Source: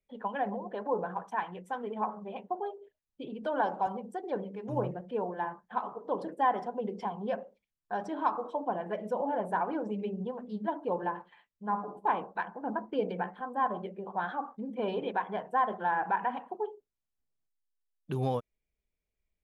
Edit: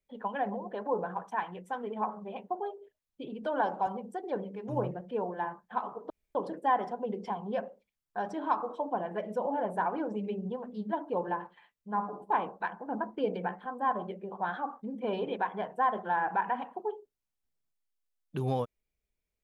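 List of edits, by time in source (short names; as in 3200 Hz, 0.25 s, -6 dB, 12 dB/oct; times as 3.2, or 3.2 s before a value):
6.1 insert room tone 0.25 s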